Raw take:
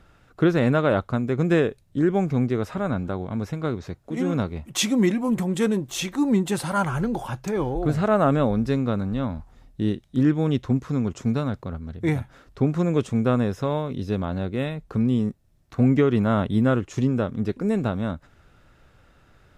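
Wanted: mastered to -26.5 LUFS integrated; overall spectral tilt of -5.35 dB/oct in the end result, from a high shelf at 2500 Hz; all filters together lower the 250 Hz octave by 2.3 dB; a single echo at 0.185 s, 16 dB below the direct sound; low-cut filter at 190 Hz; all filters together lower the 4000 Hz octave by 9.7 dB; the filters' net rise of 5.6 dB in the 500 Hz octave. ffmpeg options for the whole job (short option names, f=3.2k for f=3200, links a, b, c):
-af "highpass=190,equalizer=f=250:t=o:g=-3.5,equalizer=f=500:t=o:g=8.5,highshelf=f=2.5k:g=-7.5,equalizer=f=4k:t=o:g=-6,aecho=1:1:185:0.158,volume=-3.5dB"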